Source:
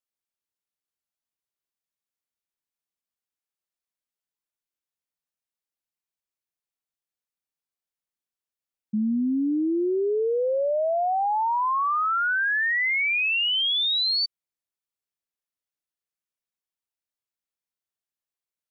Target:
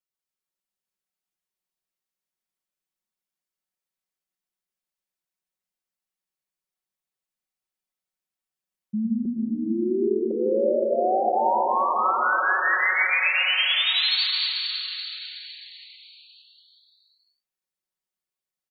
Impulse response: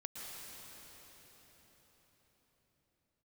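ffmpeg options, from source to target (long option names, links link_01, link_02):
-filter_complex "[0:a]asettb=1/sr,asplit=3[link_01][link_02][link_03];[link_01]atrim=end=9.254[link_04];[link_02]atrim=start=9.25:end=10.31,asetpts=PTS-STARTPTS,afade=type=in:duration=0.004:curve=qsin,afade=type=out:start_time=1.056:duration=0.004:curve=qsin,highpass=frequency=330:width=0.5412,highpass=frequency=330:width=1.3066[link_05];[link_03]atrim=start=10.306[link_06];[link_04][link_05]acrossfade=duration=0.004:curve1=hsin:curve2=qsin[link_07];[link_07][link_06]acrossfade=duration=0.004:curve1=qsin:curve2=hsin,aecho=1:1:5.4:0.95[link_08];[1:a]atrim=start_sample=2205[link_09];[link_08][link_09]afir=irnorm=-1:irlink=0"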